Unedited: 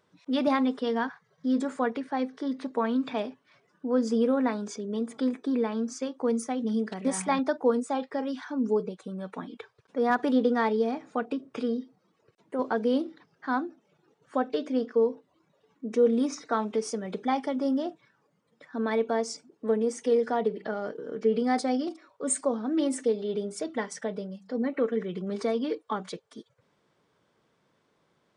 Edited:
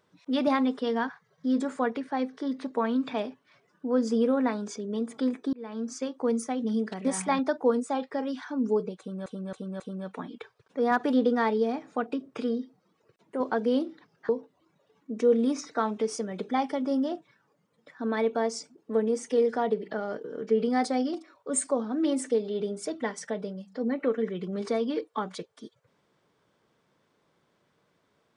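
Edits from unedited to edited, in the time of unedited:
5.53–5.94 fade in linear
8.99–9.26 loop, 4 plays
13.48–15.03 cut

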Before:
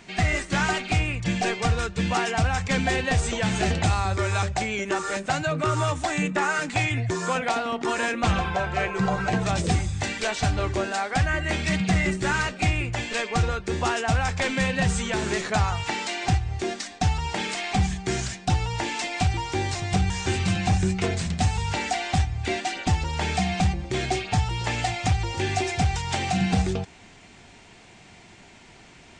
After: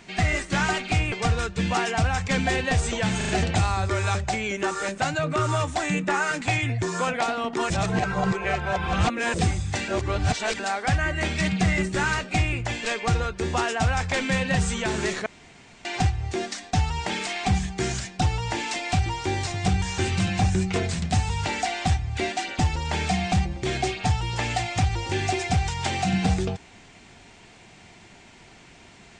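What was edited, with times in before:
1.12–1.52 cut
3.57 stutter 0.04 s, 4 plays
7.98–9.62 reverse
10.16–10.87 reverse
15.54–16.13 room tone

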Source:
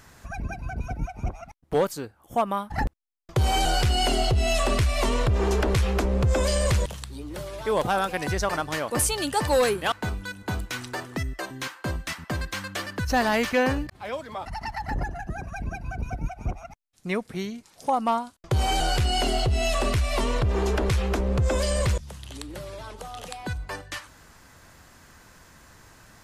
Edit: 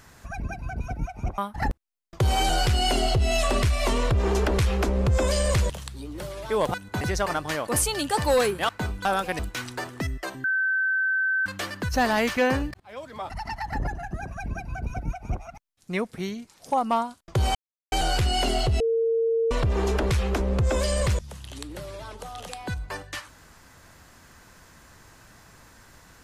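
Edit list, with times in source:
1.38–2.54 cut
7.9–8.24 swap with 10.28–10.55
11.6–12.62 bleep 1540 Hz -21 dBFS
13.96–14.37 fade in, from -21 dB
18.71 insert silence 0.37 s
19.59–20.3 bleep 456 Hz -20 dBFS

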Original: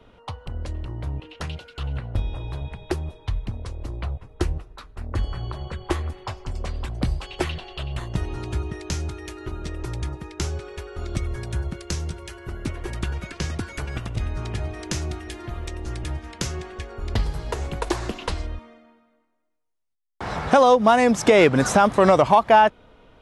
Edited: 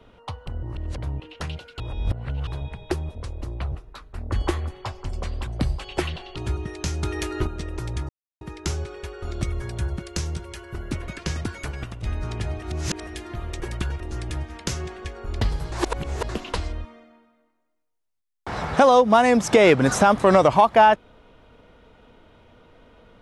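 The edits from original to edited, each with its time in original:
0.63–0.98 reverse
1.8–2.47 reverse
3.15–3.57 cut
4.14–4.55 cut
5.3–5.89 cut
7.78–8.42 cut
9.09–9.53 gain +8 dB
10.15 insert silence 0.32 s
12.82–13.22 move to 15.74
13.73–14.18 fade out, to -7 dB
14.76–15.21 reverse
17.46–18.03 reverse

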